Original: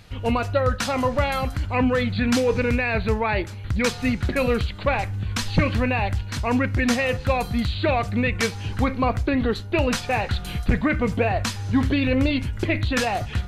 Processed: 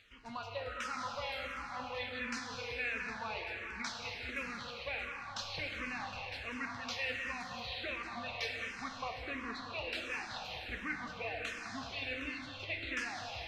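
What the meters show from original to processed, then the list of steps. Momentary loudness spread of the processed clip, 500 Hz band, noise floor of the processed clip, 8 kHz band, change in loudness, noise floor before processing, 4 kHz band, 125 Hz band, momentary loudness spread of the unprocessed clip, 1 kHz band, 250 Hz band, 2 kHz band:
4 LU, -21.0 dB, -47 dBFS, -16.0 dB, -16.5 dB, -34 dBFS, -10.5 dB, -28.5 dB, 4 LU, -15.5 dB, -25.0 dB, -11.5 dB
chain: pre-emphasis filter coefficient 0.97; reverse; upward compressor, threshold -43 dBFS; reverse; distance through air 220 m; on a send: band-passed feedback delay 205 ms, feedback 68%, band-pass 1.1 kHz, level -6 dB; on the sum: plate-style reverb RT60 4.1 s, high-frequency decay 1×, DRR 1 dB; barber-pole phaser -1.4 Hz; trim +1.5 dB

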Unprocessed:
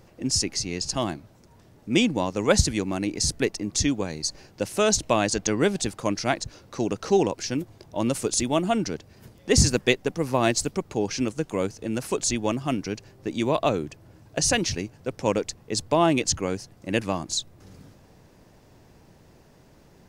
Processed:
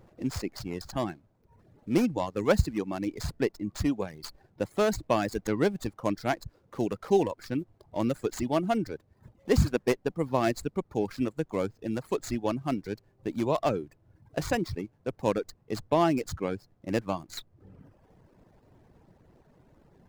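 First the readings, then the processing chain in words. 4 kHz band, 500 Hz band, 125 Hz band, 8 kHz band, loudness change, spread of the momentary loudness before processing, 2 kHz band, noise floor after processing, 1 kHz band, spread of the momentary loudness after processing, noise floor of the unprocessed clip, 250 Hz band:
-13.5 dB, -3.5 dB, -3.5 dB, -18.0 dB, -5.0 dB, 10 LU, -7.5 dB, -66 dBFS, -3.5 dB, 12 LU, -55 dBFS, -3.5 dB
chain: median filter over 15 samples; reverb removal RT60 0.81 s; trim -2.5 dB

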